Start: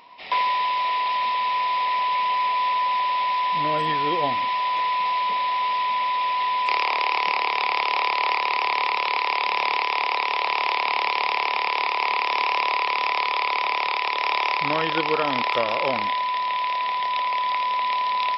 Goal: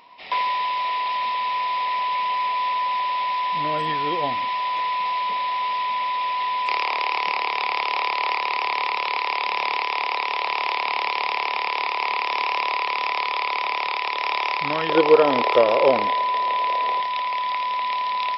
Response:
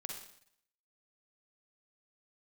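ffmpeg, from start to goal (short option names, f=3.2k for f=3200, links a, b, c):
-filter_complex "[0:a]asettb=1/sr,asplit=3[a][b][c];[a]atrim=end=14.894[d];[b]atrim=start=14.89:end=17.02,asetpts=PTS-STARTPTS,afade=t=in:d=0.004:c=qsin,afade=t=out:st=2.126:d=0.004:c=qsin,equalizer=f=450:w=1:g=13[e];[c]atrim=start=17.016[f];[d][e]acrossfade=d=0.004:c1=hsin:c2=qsin[g];[g][f]acrossfade=d=0.004:c1=qsin:c2=hsin,volume=-1dB"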